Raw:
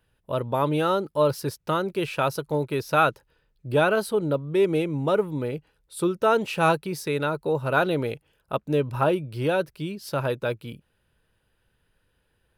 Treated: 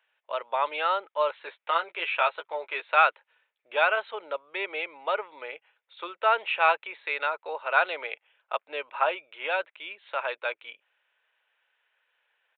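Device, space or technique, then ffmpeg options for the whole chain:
musical greeting card: -filter_complex "[0:a]aresample=8000,aresample=44100,highpass=f=660:w=0.5412,highpass=f=660:w=1.3066,equalizer=f=2200:t=o:w=0.53:g=8,asettb=1/sr,asplit=3[s0][s1][s2];[s0]atrim=end=1.434[s3];[s1]atrim=start=1.43:end=2.87,asetpts=PTS-STARTPTS,afade=t=in:d=0.004:c=qsin,afade=t=out:st=1.436:d=0.004:c=qsin,asplit=2[s4][s5];[s5]adelay=12,volume=0.501[s6];[s4][s6]amix=inputs=2:normalize=0,atrim=end_sample=63504[s7];[s2]atrim=start=2.866[s8];[s3][s7]acrossfade=d=0.004:c1=hsin:c2=qsin[s9];[s9][s8]acrossfade=d=0.004:c1=qsin:c2=hsin"

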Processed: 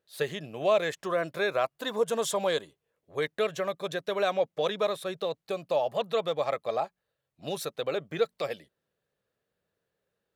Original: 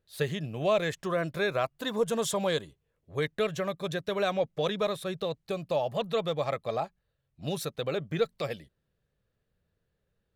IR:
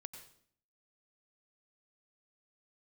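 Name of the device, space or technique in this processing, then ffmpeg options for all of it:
filter by subtraction: -filter_complex "[0:a]asplit=2[s0][s1];[s1]lowpass=560,volume=-1[s2];[s0][s2]amix=inputs=2:normalize=0"

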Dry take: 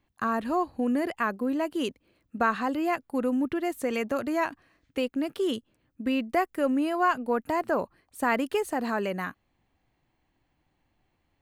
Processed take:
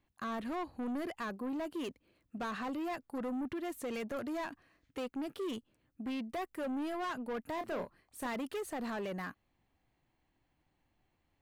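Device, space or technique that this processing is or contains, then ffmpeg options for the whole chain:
saturation between pre-emphasis and de-emphasis: -filter_complex "[0:a]highshelf=f=3000:g=8,asoftclip=type=tanh:threshold=0.0335,highshelf=f=3000:g=-8,asettb=1/sr,asplit=3[s0][s1][s2];[s0]atrim=end=7.554[s3];[s1]atrim=start=7.55:end=8.27,asetpts=PTS-STARTPTS,afade=t=in:d=0.004:c=qsin,afade=t=out:st=0.716:d=0.004:c=qsin,asplit=2[s4][s5];[s5]adelay=27,volume=0.422[s6];[s4][s6]amix=inputs=2:normalize=0,atrim=end_sample=31752[s7];[s2]atrim=start=8.266[s8];[s3][s7]acrossfade=d=0.004:c1=hsin:c2=qsin[s9];[s9][s8]acrossfade=d=0.004:c1=qsin:c2=hsin,volume=0.596"

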